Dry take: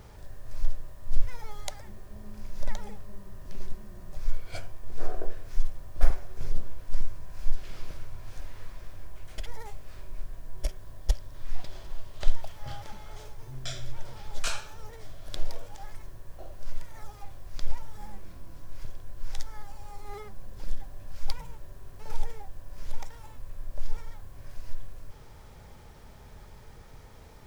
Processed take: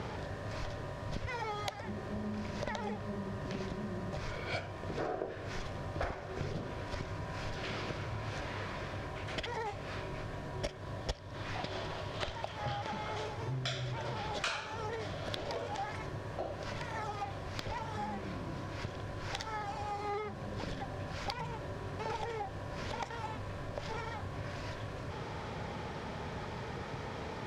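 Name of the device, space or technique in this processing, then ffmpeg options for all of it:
AM radio: -af "highpass=120,lowpass=3.9k,acompressor=threshold=-49dB:ratio=4,asoftclip=type=tanh:threshold=-33dB,volume=14dB"

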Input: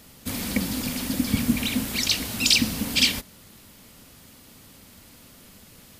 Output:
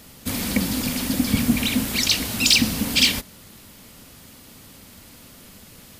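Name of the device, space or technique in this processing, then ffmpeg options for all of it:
parallel distortion: -filter_complex "[0:a]asplit=2[a][b];[b]asoftclip=type=hard:threshold=-18.5dB,volume=-5dB[c];[a][c]amix=inputs=2:normalize=0"

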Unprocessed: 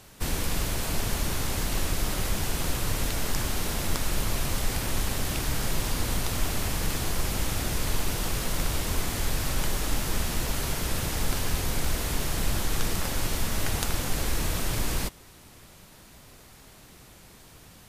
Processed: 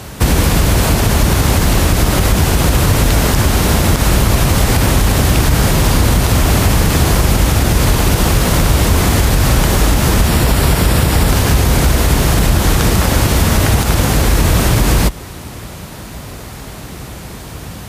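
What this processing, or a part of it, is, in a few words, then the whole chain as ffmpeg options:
mastering chain: -filter_complex "[0:a]highpass=f=41:w=0.5412,highpass=f=41:w=1.3066,equalizer=f=360:t=o:w=2.6:g=-3,acompressor=threshold=-32dB:ratio=2.5,asoftclip=type=tanh:threshold=-13.5dB,tiltshelf=f=1.3k:g=4.5,alimiter=level_in=22.5dB:limit=-1dB:release=50:level=0:latency=1,asettb=1/sr,asplit=3[a][b][c];[a]atrim=end=10.274[d];[b]atrim=start=10.27:end=11.29,asetpts=PTS-STARTPTS,afade=t=in:d=0.004:c=qsin,afade=t=out:st=1.016:d=0.004:c=qsin,bandreject=f=6.3k:w=8[e];[c]atrim=start=11.286[f];[d][e]acrossfade=d=0.004:c1=hsin:c2=qsin[g];[g][f]acrossfade=d=0.004:c1=qsin:c2=hsin,volume=-1dB"

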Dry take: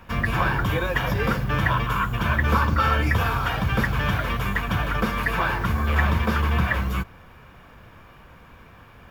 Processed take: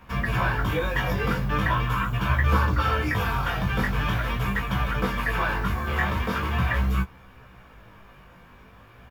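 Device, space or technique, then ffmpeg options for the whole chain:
double-tracked vocal: -filter_complex "[0:a]asplit=2[a][b];[b]adelay=16,volume=-7.5dB[c];[a][c]amix=inputs=2:normalize=0,flanger=delay=15:depth=6.8:speed=0.42"

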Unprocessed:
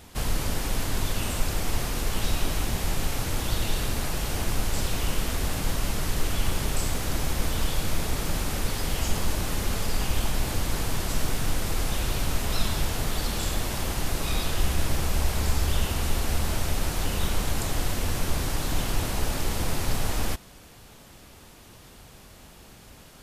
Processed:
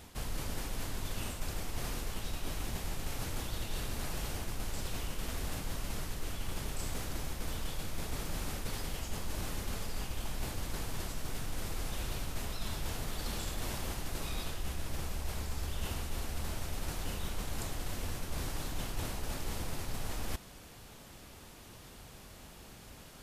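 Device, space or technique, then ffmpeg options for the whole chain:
compression on the reversed sound: -af "areverse,acompressor=threshold=-30dB:ratio=5,areverse,volume=-3dB"

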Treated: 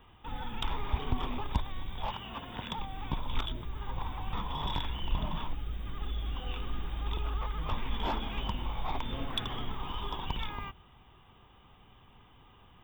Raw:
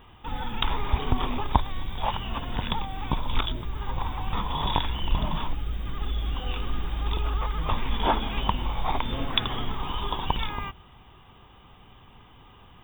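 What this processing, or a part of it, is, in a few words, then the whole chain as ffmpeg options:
one-band saturation: -filter_complex "[0:a]asettb=1/sr,asplit=3[a][b][c];[a]atrim=end=2.124[d];[b]atrim=start=2.12:end=2.78,asetpts=PTS-STARTPTS,afade=t=in:d=0.004:c=qsin,afade=t=out:st=0.656:d=0.004:c=qsin,highpass=f=150:p=1[e];[c]atrim=start=2.776[f];[d][e]acrossfade=d=0.004:c1=hsin:c2=qsin[g];[g][f]acrossfade=d=0.004:c1=qsin:c2=hsin,acrossover=split=290|3800[h][i][j];[i]asoftclip=type=tanh:threshold=-22.5dB[k];[h][k][j]amix=inputs=3:normalize=0,volume=-6.5dB"

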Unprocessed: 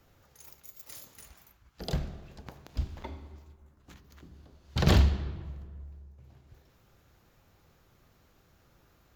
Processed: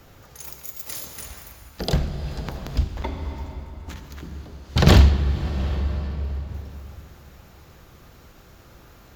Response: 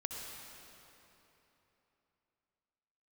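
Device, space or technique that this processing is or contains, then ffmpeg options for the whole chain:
ducked reverb: -filter_complex "[0:a]asplit=3[a][b][c];[1:a]atrim=start_sample=2205[d];[b][d]afir=irnorm=-1:irlink=0[e];[c]apad=whole_len=403946[f];[e][f]sidechaincompress=threshold=-41dB:ratio=10:attack=16:release=350,volume=1dB[g];[a][g]amix=inputs=2:normalize=0,volume=8.5dB"

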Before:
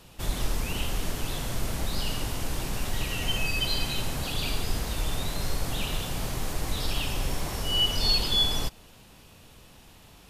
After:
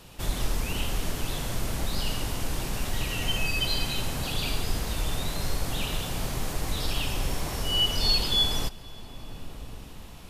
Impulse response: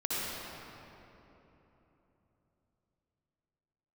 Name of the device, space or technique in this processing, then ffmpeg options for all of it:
ducked reverb: -filter_complex "[0:a]asplit=3[a][b][c];[1:a]atrim=start_sample=2205[d];[b][d]afir=irnorm=-1:irlink=0[e];[c]apad=whole_len=454064[f];[e][f]sidechaincompress=threshold=-41dB:ratio=8:attack=16:release=685,volume=-8dB[g];[a][g]amix=inputs=2:normalize=0"

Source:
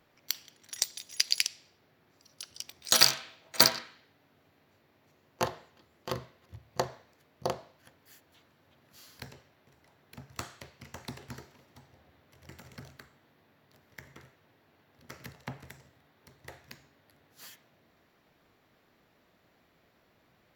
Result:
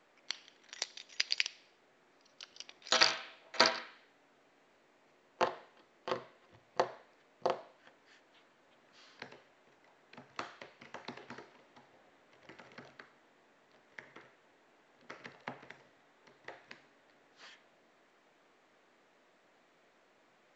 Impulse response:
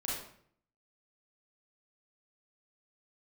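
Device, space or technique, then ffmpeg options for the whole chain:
telephone: -af "highpass=310,lowpass=3.4k" -ar 16000 -c:a pcm_mulaw

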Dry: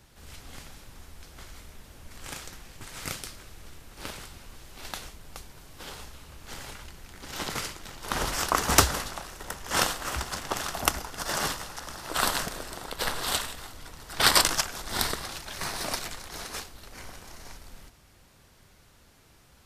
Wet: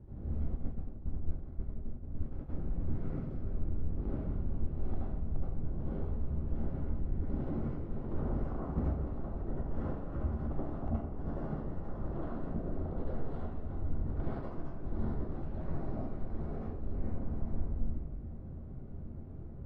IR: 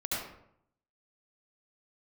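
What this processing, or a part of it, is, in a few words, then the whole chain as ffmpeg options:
television next door: -filter_complex "[0:a]acompressor=threshold=-43dB:ratio=4,lowpass=320[a];[1:a]atrim=start_sample=2205[b];[a][b]afir=irnorm=-1:irlink=0,asplit=3[c][d][e];[c]afade=t=out:st=0.55:d=0.02[f];[d]agate=range=-33dB:threshold=-35dB:ratio=3:detection=peak,afade=t=in:st=0.55:d=0.02,afade=t=out:st=2.48:d=0.02[g];[e]afade=t=in:st=2.48:d=0.02[h];[f][g][h]amix=inputs=3:normalize=0,volume=10dB"

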